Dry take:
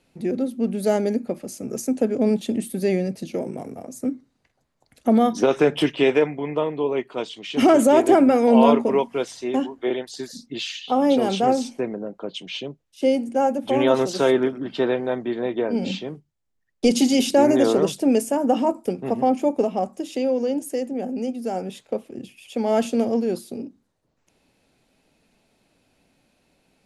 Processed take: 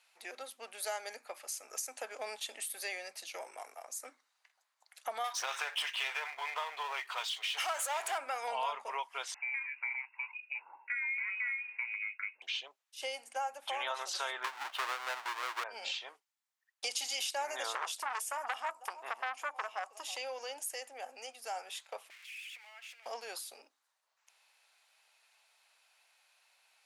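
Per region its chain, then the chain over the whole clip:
5.24–8.18 bell 270 Hz -12.5 dB 1.7 oct + power-law curve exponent 0.7
9.34–12.42 comb 1.7 ms, depth 52% + compressor 2:1, threshold -34 dBFS + inverted band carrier 2700 Hz
14.44–15.64 half-waves squared off + LPF 1800 Hz 6 dB/oct
17.75–20.17 echo 0.316 s -21.5 dB + core saturation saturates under 1200 Hz
22.1–23.06 switching spikes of -22.5 dBFS + compressor 4:1, threshold -28 dBFS + band-pass 2200 Hz, Q 3.7
whole clip: HPF 900 Hz 24 dB/oct; compressor 3:1, threshold -36 dBFS

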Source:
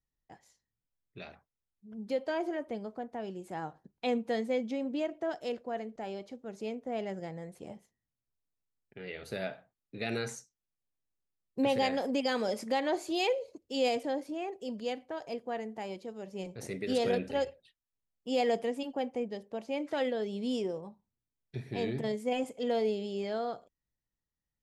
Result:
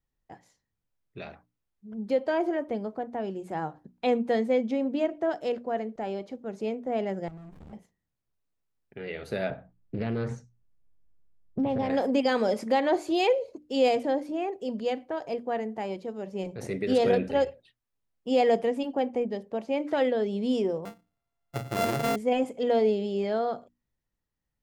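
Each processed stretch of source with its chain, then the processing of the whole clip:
7.28–7.73 high shelf 5000 Hz +10.5 dB + compressor 3:1, threshold -49 dBFS + running maximum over 65 samples
9.5–11.9 RIAA curve playback + compressor 4:1, threshold -32 dBFS + Doppler distortion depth 0.3 ms
20.85–22.16 sample sorter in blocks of 64 samples + high shelf 8500 Hz +6.5 dB
whole clip: high shelf 2900 Hz -9 dB; notches 60/120/180/240/300 Hz; gain +7 dB

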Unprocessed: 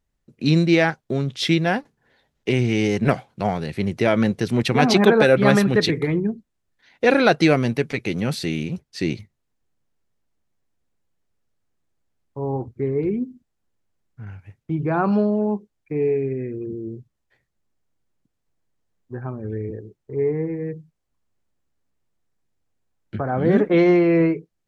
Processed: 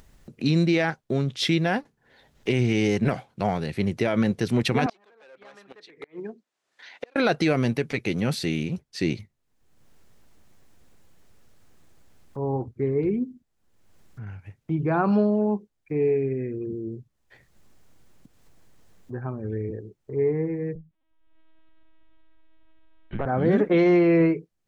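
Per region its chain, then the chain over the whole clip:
4.86–7.16 hard clip -12.5 dBFS + BPF 510–7500 Hz + flipped gate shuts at -18 dBFS, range -36 dB
20.75–23.26 hard clip -18.5 dBFS + LPC vocoder at 8 kHz pitch kept
whole clip: limiter -10.5 dBFS; upward compressor, threshold -34 dBFS; gain -1.5 dB

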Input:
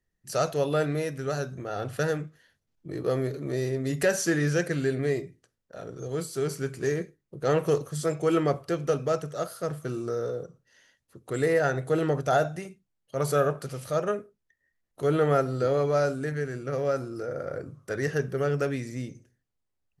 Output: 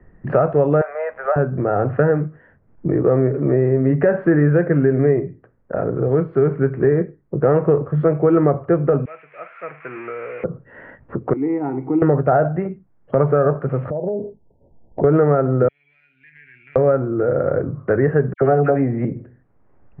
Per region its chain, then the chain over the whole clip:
0.81–1.36 steep high-pass 560 Hz 48 dB/oct + high shelf 9400 Hz -4 dB + sample gate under -53.5 dBFS
9.05–10.44 switching spikes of -22.5 dBFS + band-pass 2400 Hz, Q 6.8
11.33–12.02 vowel filter u + upward compressor, threshold -46 dBFS
13.9–15.04 Chebyshev low-pass 960 Hz, order 10 + compressor 12:1, threshold -40 dBFS
15.68–16.76 elliptic high-pass 2400 Hz, stop band 50 dB + compressor 2.5:1, threshold -55 dBFS
18.33–19.05 bell 740 Hz +14 dB 0.28 oct + doubler 18 ms -12.5 dB + dispersion lows, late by 79 ms, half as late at 2000 Hz
whole clip: Bessel low-pass 1100 Hz, order 8; maximiser +17.5 dB; three-band squash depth 70%; gain -5 dB

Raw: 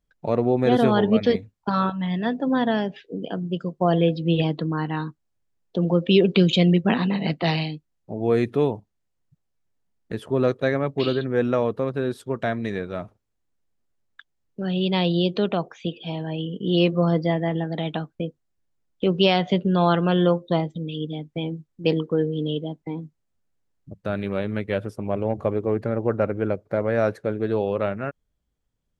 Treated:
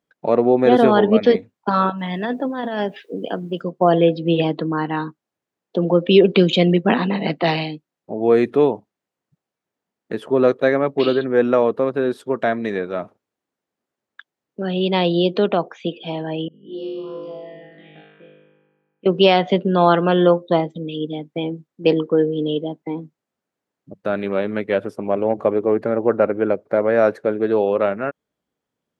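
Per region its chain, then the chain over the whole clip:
1.98–3.61 low shelf 450 Hz -4 dB + negative-ratio compressor -26 dBFS, ratio -0.5 + requantised 12-bit, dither triangular
16.48–19.06 bell 680 Hz -2.5 dB 0.22 oct + resonator 51 Hz, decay 1.6 s, mix 100% + envelope phaser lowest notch 590 Hz, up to 2200 Hz, full sweep at -32.5 dBFS
whole clip: HPF 250 Hz 12 dB/oct; high shelf 3300 Hz -9 dB; gain +7 dB

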